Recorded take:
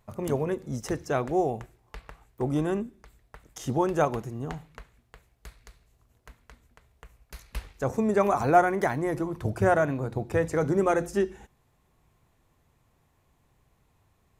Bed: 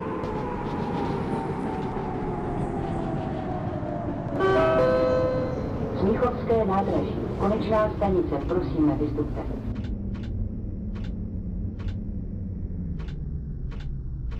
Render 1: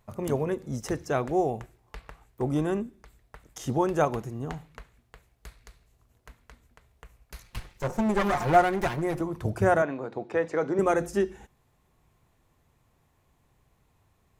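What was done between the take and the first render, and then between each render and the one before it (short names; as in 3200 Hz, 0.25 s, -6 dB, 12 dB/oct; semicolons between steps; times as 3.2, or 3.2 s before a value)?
7.43–9.21 minimum comb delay 5.6 ms; 9.82–10.79 BPF 280–4200 Hz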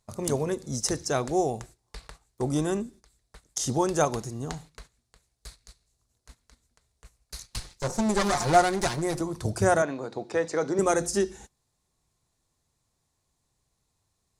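gate -48 dBFS, range -11 dB; band shelf 6300 Hz +13.5 dB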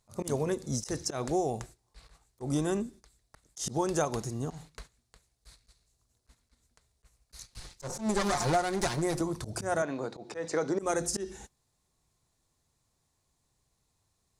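compressor 4:1, threshold -25 dBFS, peak gain reduction 10 dB; auto swell 0.114 s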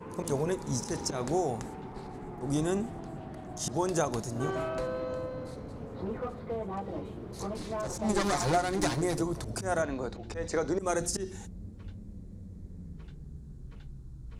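add bed -13 dB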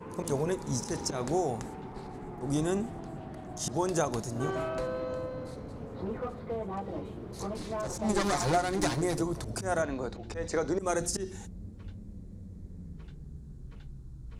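nothing audible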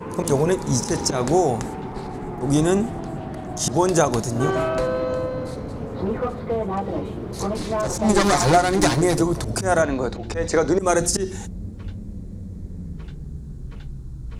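gain +11 dB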